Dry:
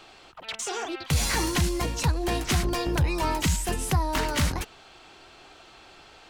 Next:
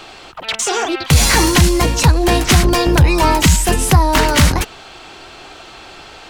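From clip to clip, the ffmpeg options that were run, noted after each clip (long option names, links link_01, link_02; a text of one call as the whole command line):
ffmpeg -i in.wav -af "acontrast=87,volume=6.5dB" out.wav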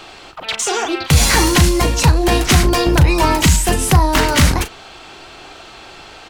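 ffmpeg -i in.wav -filter_complex "[0:a]asplit=2[link_01][link_02];[link_02]adelay=38,volume=-11.5dB[link_03];[link_01][link_03]amix=inputs=2:normalize=0,volume=-1dB" out.wav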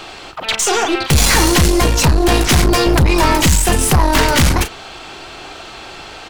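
ffmpeg -i in.wav -af "aeval=exprs='(tanh(5.01*val(0)+0.4)-tanh(0.4))/5.01':channel_layout=same,volume=6dB" out.wav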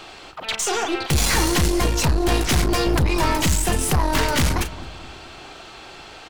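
ffmpeg -i in.wav -filter_complex "[0:a]asplit=2[link_01][link_02];[link_02]adelay=217,lowpass=frequency=1100:poles=1,volume=-14dB,asplit=2[link_03][link_04];[link_04]adelay=217,lowpass=frequency=1100:poles=1,volume=0.54,asplit=2[link_05][link_06];[link_06]adelay=217,lowpass=frequency=1100:poles=1,volume=0.54,asplit=2[link_07][link_08];[link_08]adelay=217,lowpass=frequency=1100:poles=1,volume=0.54,asplit=2[link_09][link_10];[link_10]adelay=217,lowpass=frequency=1100:poles=1,volume=0.54[link_11];[link_01][link_03][link_05][link_07][link_09][link_11]amix=inputs=6:normalize=0,volume=-7.5dB" out.wav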